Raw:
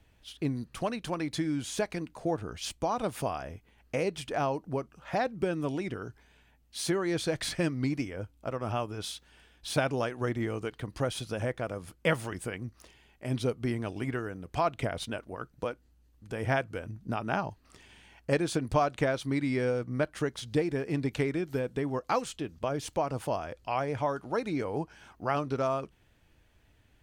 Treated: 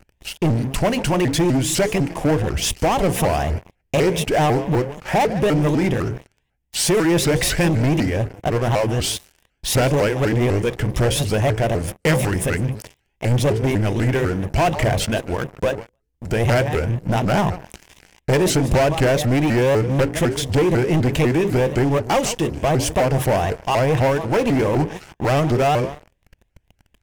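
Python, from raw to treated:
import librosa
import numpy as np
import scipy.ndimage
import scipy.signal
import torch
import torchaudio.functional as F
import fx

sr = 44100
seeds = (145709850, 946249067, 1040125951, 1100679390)

y = fx.low_shelf(x, sr, hz=130.0, db=10.5)
y = fx.hum_notches(y, sr, base_hz=60, count=9)
y = fx.echo_feedback(y, sr, ms=152, feedback_pct=24, wet_db=-19)
y = fx.leveller(y, sr, passes=5)
y = fx.graphic_eq_31(y, sr, hz=(100, 250, 1250, 4000), db=(-4, -5, -9, -8))
y = fx.vibrato_shape(y, sr, shape='saw_up', rate_hz=4.0, depth_cents=250.0)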